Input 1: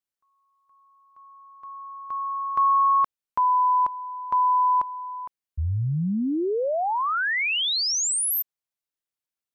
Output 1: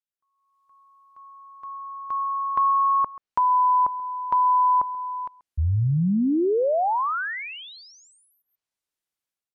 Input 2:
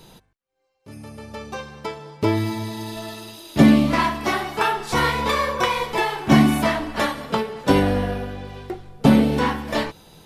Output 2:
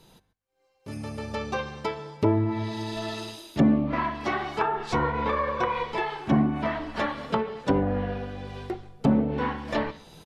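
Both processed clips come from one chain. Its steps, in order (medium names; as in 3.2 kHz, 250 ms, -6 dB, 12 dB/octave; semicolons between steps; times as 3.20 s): level rider gain up to 12.5 dB; echo from a far wall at 23 m, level -21 dB; low-pass that closes with the level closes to 1.1 kHz, closed at -10.5 dBFS; trim -9 dB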